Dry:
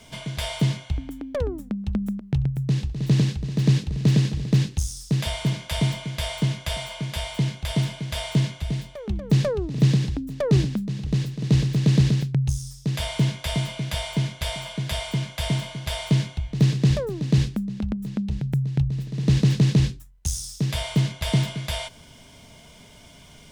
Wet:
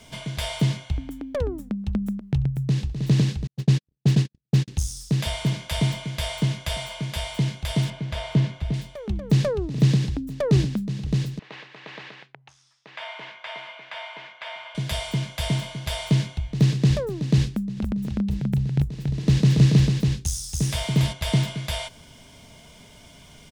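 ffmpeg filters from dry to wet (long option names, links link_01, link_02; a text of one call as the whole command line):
ffmpeg -i in.wav -filter_complex "[0:a]asettb=1/sr,asplit=3[link_01][link_02][link_03];[link_01]atrim=end=3.474[link_04];[link_02]atrim=start=3.47:end=4.68,asetpts=PTS-STARTPTS,afade=type=in:duration=0.004:curve=qsin,afade=type=out:start_time=1.206:duration=0.004:curve=qsin,agate=range=-60dB:threshold=-20dB:ratio=16:release=100:detection=peak[link_05];[link_03]atrim=start=4.676[link_06];[link_04][link_05]acrossfade=duration=0.004:curve1=hsin:curve2=qsin[link_07];[link_07][link_06]acrossfade=duration=0.004:curve1=qsin:curve2=hsin,asettb=1/sr,asplit=3[link_08][link_09][link_10];[link_08]atrim=end=7.904[link_11];[link_09]atrim=start=7.9:end=8.74,asetpts=PTS-STARTPTS,afade=type=in:duration=0.004:curve=qsin,afade=type=out:start_time=0.836:duration=0.004:curve=qsin,aemphasis=mode=reproduction:type=75fm[link_12];[link_10]atrim=start=8.736[link_13];[link_11][link_12]acrossfade=duration=0.004:curve1=hsin:curve2=qsin[link_14];[link_14][link_13]acrossfade=duration=0.004:curve1=qsin:curve2=hsin,asettb=1/sr,asplit=3[link_15][link_16][link_17];[link_15]atrim=end=11.394[link_18];[link_16]atrim=start=11.39:end=14.75,asetpts=PTS-STARTPTS,afade=type=in:duration=0.004:curve=qsin,afade=type=out:start_time=3.356:duration=0.004:curve=qsin,asuperpass=centerf=1400:order=4:qfactor=0.78[link_19];[link_17]atrim=start=14.746[link_20];[link_18][link_19]acrossfade=duration=0.004:curve1=hsin:curve2=qsin[link_21];[link_21][link_20]acrossfade=duration=0.004:curve1=qsin:curve2=hsin,asplit=3[link_22][link_23][link_24];[link_22]afade=type=out:start_time=17.76:duration=0.02[link_25];[link_23]aecho=1:1:281:0.668,afade=type=in:start_time=17.76:duration=0.02,afade=type=out:start_time=21.12:duration=0.02[link_26];[link_24]afade=type=in:start_time=21.12:duration=0.02[link_27];[link_25][link_26][link_27]amix=inputs=3:normalize=0" out.wav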